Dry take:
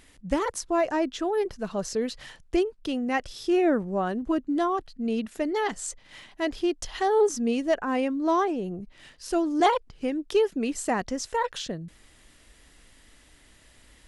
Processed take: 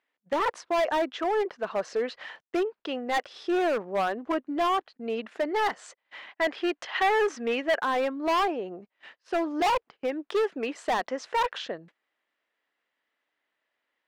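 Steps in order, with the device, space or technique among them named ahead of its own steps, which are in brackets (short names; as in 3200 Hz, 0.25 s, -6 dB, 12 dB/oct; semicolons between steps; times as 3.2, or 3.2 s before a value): walkie-talkie (BPF 570–2300 Hz; hard clip -28 dBFS, distortion -8 dB; gate -54 dBFS, range -24 dB); 6.27–7.8 bell 2100 Hz +6 dB 1.4 oct; gain +6.5 dB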